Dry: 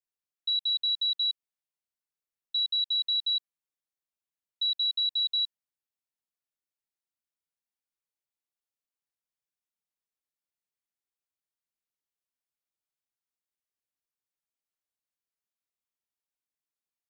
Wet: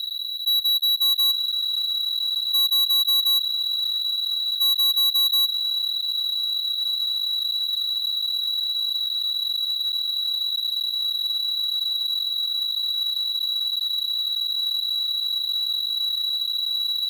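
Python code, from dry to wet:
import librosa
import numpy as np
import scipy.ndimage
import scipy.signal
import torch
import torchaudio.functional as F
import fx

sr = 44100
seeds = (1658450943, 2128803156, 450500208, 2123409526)

y = fx.bin_compress(x, sr, power=0.2)
y = fx.peak_eq(y, sr, hz=3700.0, db=fx.steps((0.0, 5.5), (1.02, 12.5)), octaves=0.43)
y = fx.leveller(y, sr, passes=5)
y = F.gain(torch.from_numpy(y), -7.5).numpy()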